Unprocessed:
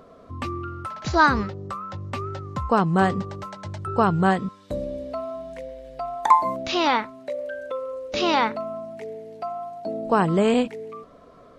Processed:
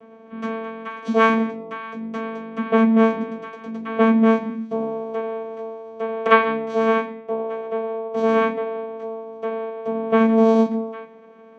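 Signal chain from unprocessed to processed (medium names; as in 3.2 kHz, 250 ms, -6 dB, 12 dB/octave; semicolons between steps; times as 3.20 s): 6.65–8.68 s: low-pass 1.9 kHz 12 dB/octave; vocoder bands 4, saw 224 Hz; reverberation RT60 0.45 s, pre-delay 3 ms, DRR -3 dB; trim -5.5 dB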